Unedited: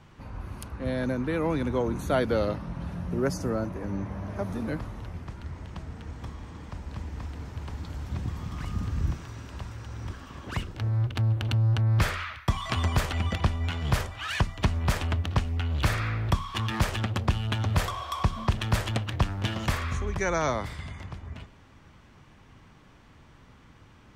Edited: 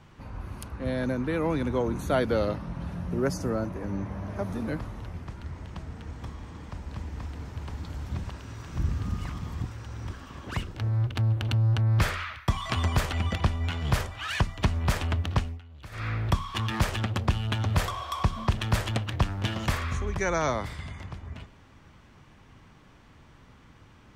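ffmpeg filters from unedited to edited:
-filter_complex "[0:a]asplit=5[s0][s1][s2][s3][s4];[s0]atrim=end=8.242[s5];[s1]atrim=start=8.238:end=9.662,asetpts=PTS-STARTPTS,areverse[s6];[s2]atrim=start=9.658:end=15.6,asetpts=PTS-STARTPTS,afade=t=out:st=5.672:d=0.27:c=qsin:silence=0.1[s7];[s3]atrim=start=15.6:end=15.91,asetpts=PTS-STARTPTS,volume=0.1[s8];[s4]atrim=start=15.91,asetpts=PTS-STARTPTS,afade=t=in:d=0.27:c=qsin:silence=0.1[s9];[s5][s6]acrossfade=d=0.004:c1=hsin:c2=hsin[s10];[s7][s8][s9]concat=n=3:v=0:a=1[s11];[s10][s11]acrossfade=d=0.004:c1=hsin:c2=hsin"

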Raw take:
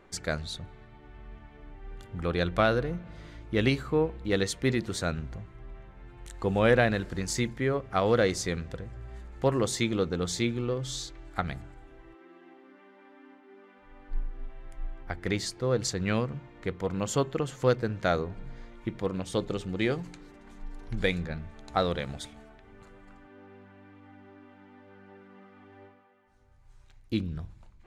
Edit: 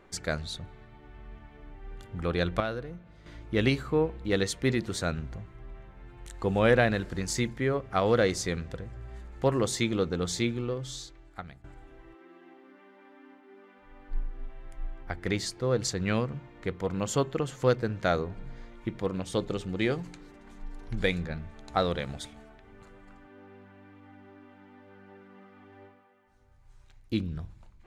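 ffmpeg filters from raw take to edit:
-filter_complex "[0:a]asplit=4[s0][s1][s2][s3];[s0]atrim=end=2.602[s4];[s1]atrim=start=2.598:end=3.262,asetpts=PTS-STARTPTS,volume=0.376[s5];[s2]atrim=start=3.258:end=11.64,asetpts=PTS-STARTPTS,afade=t=out:st=7.162:d=1.22:silence=0.141254[s6];[s3]atrim=start=11.64,asetpts=PTS-STARTPTS,afade=t=in:d=0.004:c=hsin:silence=0.141254[s7];[s4][s5]acrossfade=d=0.004:c1=hsin:c2=hsin[s8];[s6][s7]concat=n=2:v=0:a=1[s9];[s8][s9]acrossfade=d=0.004:c1=hsin:c2=hsin"

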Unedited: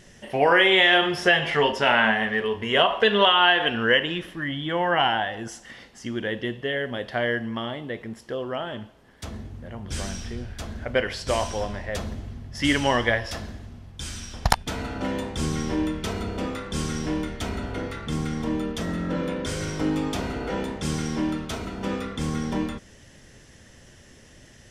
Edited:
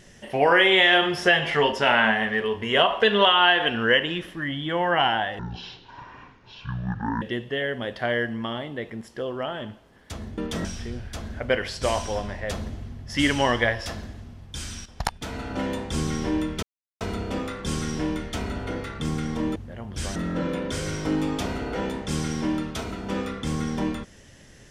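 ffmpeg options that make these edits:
-filter_complex "[0:a]asplit=9[s0][s1][s2][s3][s4][s5][s6][s7][s8];[s0]atrim=end=5.394[s9];[s1]atrim=start=5.39:end=6.34,asetpts=PTS-STARTPTS,asetrate=22932,aresample=44100,atrim=end_sample=80567,asetpts=PTS-STARTPTS[s10];[s2]atrim=start=6.336:end=9.502[s11];[s3]atrim=start=18.628:end=18.902[s12];[s4]atrim=start=10.098:end=14.31,asetpts=PTS-STARTPTS,afade=t=out:st=4.208:d=0.004:c=hsin:silence=0.223872[s13];[s5]atrim=start=14.31:end=16.08,asetpts=PTS-STARTPTS,afade=t=in:d=0.72:silence=0.223872,afade=t=out:st=1.766:d=0.004:c=hsin,apad=pad_dur=0.38[s14];[s6]atrim=start=16.08:end=18.632,asetpts=PTS-STARTPTS,afade=t=in:d=0.004:c=hsin[s15];[s7]atrim=start=9.498:end=10.102[s16];[s8]atrim=start=18.898[s17];[s9][s10]acrossfade=d=0.004:c1=hsin:c2=hsin[s18];[s18][s11]acrossfade=d=0.004:c1=hsin:c2=hsin[s19];[s19][s12]acrossfade=d=0.004:c1=hsin:c2=hsin[s20];[s13][s14][s15]concat=n=3:v=0:a=1[s21];[s20][s21]acrossfade=d=0.004:c1=hsin:c2=hsin[s22];[s22][s16]acrossfade=d=0.004:c1=hsin:c2=hsin[s23];[s23][s17]acrossfade=d=0.004:c1=hsin:c2=hsin"

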